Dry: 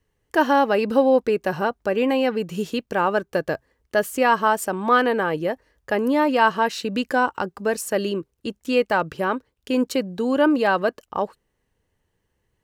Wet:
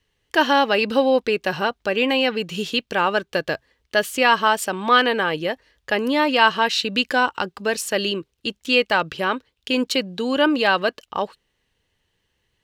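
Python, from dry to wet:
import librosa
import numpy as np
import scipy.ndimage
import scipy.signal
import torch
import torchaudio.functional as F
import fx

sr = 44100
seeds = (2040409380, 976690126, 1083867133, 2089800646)

y = fx.peak_eq(x, sr, hz=3400.0, db=13.5, octaves=1.7)
y = y * 10.0 ** (-1.5 / 20.0)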